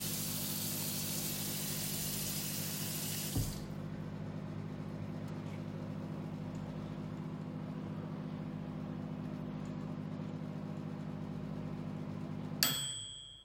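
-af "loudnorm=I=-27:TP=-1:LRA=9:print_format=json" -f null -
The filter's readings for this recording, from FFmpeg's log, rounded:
"input_i" : "-39.4",
"input_tp" : "-12.3",
"input_lra" : "5.9",
"input_thresh" : "-49.4",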